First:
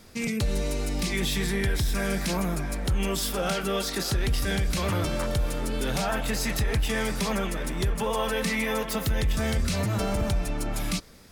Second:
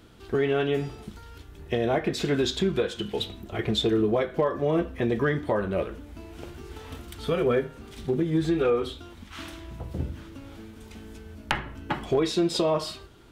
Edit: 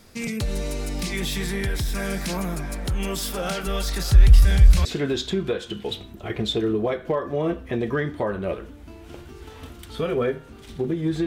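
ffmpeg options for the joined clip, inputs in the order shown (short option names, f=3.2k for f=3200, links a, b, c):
-filter_complex "[0:a]asplit=3[a][b][c];[a]afade=t=out:st=3.66:d=0.02[d];[b]asubboost=boost=8.5:cutoff=95,afade=t=in:st=3.66:d=0.02,afade=t=out:st=4.85:d=0.02[e];[c]afade=t=in:st=4.85:d=0.02[f];[d][e][f]amix=inputs=3:normalize=0,apad=whole_dur=11.26,atrim=end=11.26,atrim=end=4.852[g];[1:a]atrim=start=2.138:end=8.55[h];[g][h]acrossfade=d=0.004:c1=hsin:c2=hsin"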